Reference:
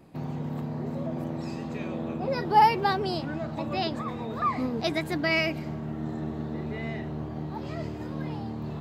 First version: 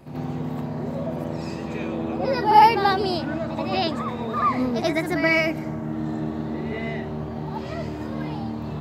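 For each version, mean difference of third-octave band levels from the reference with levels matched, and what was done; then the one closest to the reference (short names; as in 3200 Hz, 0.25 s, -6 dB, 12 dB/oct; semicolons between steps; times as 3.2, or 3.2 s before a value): 1.5 dB: spectral gain 4.8–5.93, 2300–5200 Hz -6 dB; reverse echo 83 ms -7.5 dB; gain +5 dB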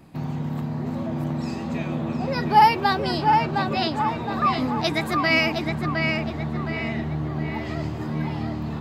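2.5 dB: bell 470 Hz -6.5 dB 1.2 oct; on a send: tape echo 0.714 s, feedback 49%, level -3 dB, low-pass 3200 Hz; on the sum: gain +6 dB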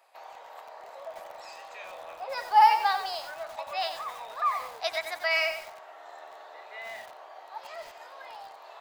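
13.0 dB: steep high-pass 620 Hz 36 dB/oct; lo-fi delay 92 ms, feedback 35%, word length 7-bit, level -7.5 dB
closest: first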